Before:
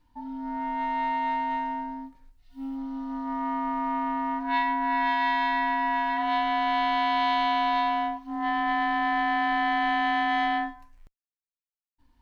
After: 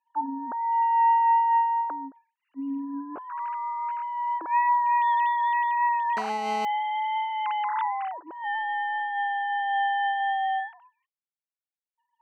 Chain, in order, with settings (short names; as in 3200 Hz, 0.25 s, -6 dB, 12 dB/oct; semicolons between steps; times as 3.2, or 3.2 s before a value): sine-wave speech; 6.17–6.65 GSM buzz -34 dBFS; 10.2–10.6 low shelf 250 Hz +11 dB; noise-modulated level, depth 60%; gain +3.5 dB